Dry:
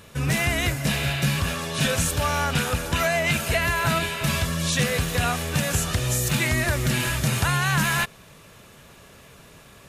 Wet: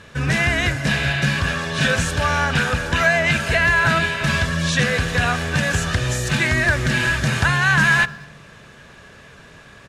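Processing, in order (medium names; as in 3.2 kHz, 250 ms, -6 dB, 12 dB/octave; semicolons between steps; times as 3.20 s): low-pass 6.3 kHz 12 dB/octave; peaking EQ 1.6 kHz +9.5 dB 0.37 oct; band-stop 1.4 kHz, Q 21; speakerphone echo 210 ms, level -24 dB; on a send at -20 dB: reverberation RT60 1.2 s, pre-delay 47 ms; on the sum: trim +3 dB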